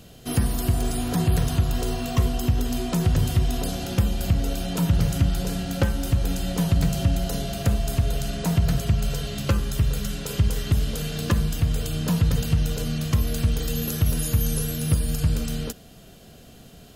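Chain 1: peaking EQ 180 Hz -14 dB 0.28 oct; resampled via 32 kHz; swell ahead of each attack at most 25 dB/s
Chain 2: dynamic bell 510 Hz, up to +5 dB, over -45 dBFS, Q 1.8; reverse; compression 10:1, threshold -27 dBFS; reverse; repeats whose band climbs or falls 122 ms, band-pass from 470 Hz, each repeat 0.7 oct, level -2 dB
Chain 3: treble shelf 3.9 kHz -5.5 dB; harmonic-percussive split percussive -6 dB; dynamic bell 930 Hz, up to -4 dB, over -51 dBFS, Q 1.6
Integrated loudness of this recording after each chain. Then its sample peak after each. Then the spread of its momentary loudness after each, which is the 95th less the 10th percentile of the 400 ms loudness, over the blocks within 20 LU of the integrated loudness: -22.0 LUFS, -32.5 LUFS, -26.5 LUFS; -5.5 dBFS, -18.0 dBFS, -11.5 dBFS; 5 LU, 2 LU, 6 LU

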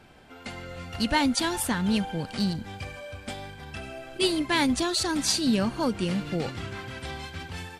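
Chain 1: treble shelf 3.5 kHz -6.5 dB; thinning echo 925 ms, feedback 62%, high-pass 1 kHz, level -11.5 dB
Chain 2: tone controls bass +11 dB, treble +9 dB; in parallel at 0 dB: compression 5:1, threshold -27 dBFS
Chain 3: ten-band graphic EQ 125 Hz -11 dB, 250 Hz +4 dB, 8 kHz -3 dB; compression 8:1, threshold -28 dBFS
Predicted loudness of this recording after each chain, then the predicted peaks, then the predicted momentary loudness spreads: -28.5 LUFS, -19.5 LUFS, -34.0 LUFS; -11.5 dBFS, -2.0 dBFS, -17.5 dBFS; 15 LU, 12 LU, 10 LU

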